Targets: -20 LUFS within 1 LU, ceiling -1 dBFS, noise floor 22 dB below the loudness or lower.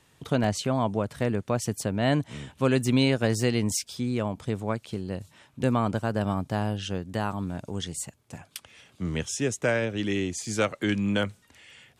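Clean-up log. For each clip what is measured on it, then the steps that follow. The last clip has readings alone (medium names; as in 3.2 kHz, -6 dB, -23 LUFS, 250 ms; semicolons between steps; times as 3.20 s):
dropouts 1; longest dropout 1.8 ms; loudness -28.0 LUFS; peak level -11.0 dBFS; loudness target -20.0 LUFS
-> interpolate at 0.44 s, 1.8 ms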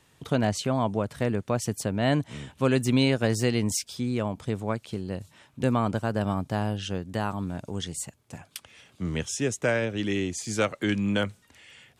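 dropouts 0; loudness -28.0 LUFS; peak level -11.0 dBFS; loudness target -20.0 LUFS
-> trim +8 dB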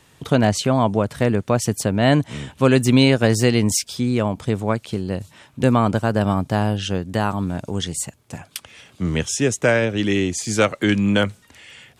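loudness -20.0 LUFS; peak level -3.0 dBFS; noise floor -55 dBFS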